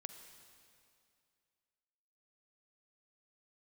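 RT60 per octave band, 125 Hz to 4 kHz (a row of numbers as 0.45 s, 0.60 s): 2.4 s, 2.4 s, 2.5 s, 2.4 s, 2.3 s, 2.3 s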